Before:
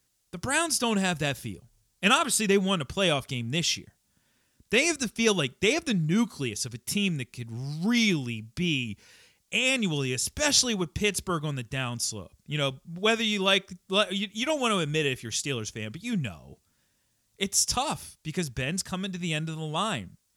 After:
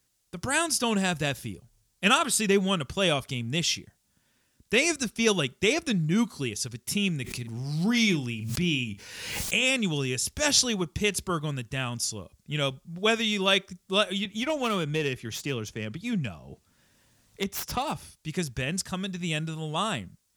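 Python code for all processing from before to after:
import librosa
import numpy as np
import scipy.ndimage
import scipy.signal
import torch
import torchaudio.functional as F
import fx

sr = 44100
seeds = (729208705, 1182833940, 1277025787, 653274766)

y = fx.chain(x, sr, fx.doubler(ms=40.0, db=-13),
    fx.pre_swell(db_per_s=44.0), at=(7.24, 9.71))
y = fx.chain(y, sr, fx.self_delay(depth_ms=0.068),
    fx.high_shelf(hz=3700.0, db=-7.5),
    fx.band_squash(depth_pct=40), at=(14.25, 18.13))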